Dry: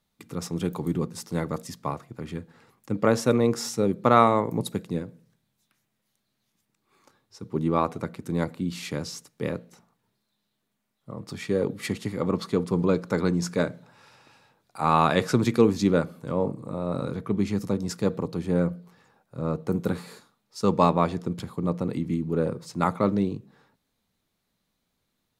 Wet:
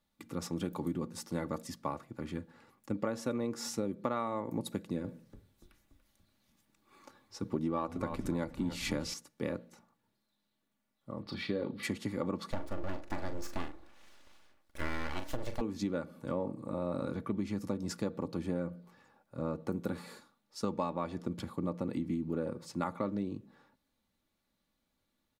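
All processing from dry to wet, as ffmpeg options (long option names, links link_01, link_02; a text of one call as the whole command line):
ffmpeg -i in.wav -filter_complex "[0:a]asettb=1/sr,asplit=3[link_01][link_02][link_03];[link_01]atrim=end=5.044[link_04];[link_02]atrim=start=5.04:end=9.14,asetpts=PTS-STARTPTS,afade=type=in:duration=0.004:curve=qsin,afade=type=out:start_time=4.096:duration=0.004:curve=qsin,acontrast=61,asplit=6[link_05][link_06][link_07][link_08][link_09][link_10];[link_06]adelay=288,afreqshift=-68,volume=-13.5dB[link_11];[link_07]adelay=576,afreqshift=-136,volume=-19dB[link_12];[link_08]adelay=864,afreqshift=-204,volume=-24.5dB[link_13];[link_09]adelay=1152,afreqshift=-272,volume=-30dB[link_14];[link_10]adelay=1440,afreqshift=-340,volume=-35.6dB[link_15];[link_05][link_11][link_12][link_13][link_14][link_15]amix=inputs=6:normalize=0,atrim=end_sample=180810[link_16];[link_03]atrim=start=9.136[link_17];[link_04][link_16]acrossfade=duration=0.004:curve1=hsin:curve2=qsin[link_18];[link_18][link_17]acrossfade=duration=0.004:curve1=qsin:curve2=hsin,asettb=1/sr,asplit=3[link_19][link_20][link_21];[link_19]atrim=end=11.224[link_22];[link_20]atrim=start=11.22:end=11.83,asetpts=PTS-STARTPTS,afade=type=in:duration=0.004:curve=qsin,afade=type=out:start_time=0.606:duration=0.004:curve=qsin,highshelf=frequency=5500:width_type=q:width=3:gain=-9.5,asplit=2[link_23][link_24];[link_24]adelay=35,volume=-9dB[link_25];[link_23][link_25]amix=inputs=2:normalize=0,atrim=end_sample=26901[link_26];[link_21]atrim=start=11.826[link_27];[link_22][link_26]acrossfade=duration=0.004:curve1=hsin:curve2=qsin[link_28];[link_28][link_27]acrossfade=duration=0.004:curve1=qsin:curve2=hsin,asettb=1/sr,asplit=3[link_29][link_30][link_31];[link_29]atrim=end=12.514[link_32];[link_30]atrim=start=12.51:end=15.61,asetpts=PTS-STARTPTS,afade=type=in:duration=0.004:curve=qsin,afade=type=out:start_time=3.096:duration=0.004:curve=qsin,highpass=48,aeval=exprs='abs(val(0))':channel_layout=same,asplit=2[link_33][link_34];[link_34]adelay=41,volume=-9.5dB[link_35];[link_33][link_35]amix=inputs=2:normalize=0,atrim=end_sample=136710[link_36];[link_31]atrim=start=15.606[link_37];[link_32][link_36]acrossfade=duration=0.004:curve1=hsin:curve2=qsin[link_38];[link_38][link_37]acrossfade=duration=0.004:curve1=qsin:curve2=hsin,equalizer=frequency=8900:width=0.33:gain=-3,aecho=1:1:3.5:0.41,acompressor=threshold=-26dB:ratio=10,volume=-4dB" out.wav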